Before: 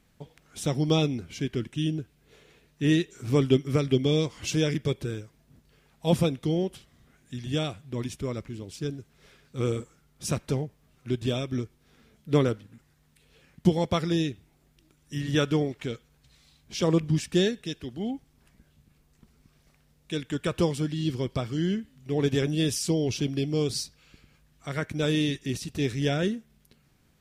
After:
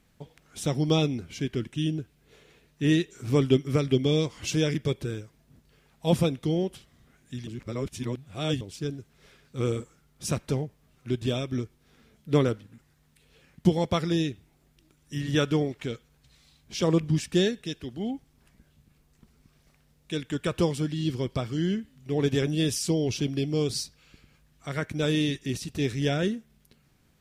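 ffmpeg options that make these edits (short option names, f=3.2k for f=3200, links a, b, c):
-filter_complex "[0:a]asplit=3[a][b][c];[a]atrim=end=7.472[d];[b]atrim=start=7.468:end=8.612,asetpts=PTS-STARTPTS,areverse[e];[c]atrim=start=8.608[f];[d][e]acrossfade=d=0.004:c1=hsin:c2=hsin[g];[g][f]acrossfade=d=0.004:c1=hsin:c2=hsin"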